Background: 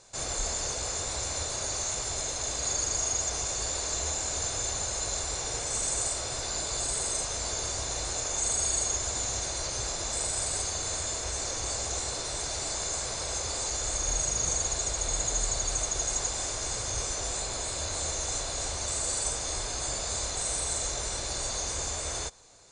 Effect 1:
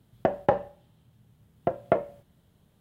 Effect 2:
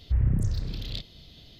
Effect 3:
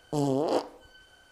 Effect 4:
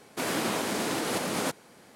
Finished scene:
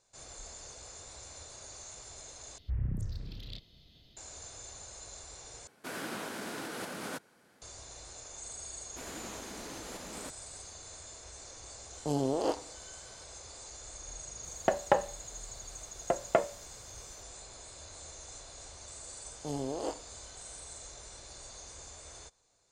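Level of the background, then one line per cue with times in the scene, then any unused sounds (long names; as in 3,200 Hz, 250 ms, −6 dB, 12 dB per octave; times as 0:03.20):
background −16 dB
0:02.58: overwrite with 2 −10 dB
0:05.67: overwrite with 4 −11 dB + parametric band 1,500 Hz +7 dB 0.29 octaves
0:08.79: mix in 4 −15.5 dB
0:11.93: mix in 3 −4 dB
0:14.43: mix in 1 −1 dB + spectral tilt +3 dB per octave
0:19.32: mix in 3 −9.5 dB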